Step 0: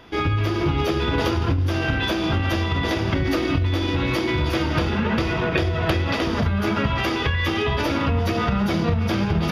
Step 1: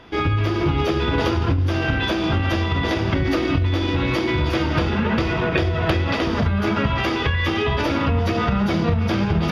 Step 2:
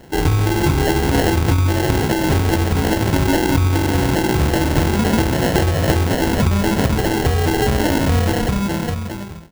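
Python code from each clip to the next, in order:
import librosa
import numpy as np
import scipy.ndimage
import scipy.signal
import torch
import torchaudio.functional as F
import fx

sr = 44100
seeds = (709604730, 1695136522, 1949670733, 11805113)

y1 = fx.high_shelf(x, sr, hz=9200.0, db=-11.5)
y1 = y1 * librosa.db_to_amplitude(1.5)
y2 = fx.fade_out_tail(y1, sr, length_s=1.34)
y2 = fx.sample_hold(y2, sr, seeds[0], rate_hz=1200.0, jitter_pct=0)
y2 = y2 * librosa.db_to_amplitude(4.0)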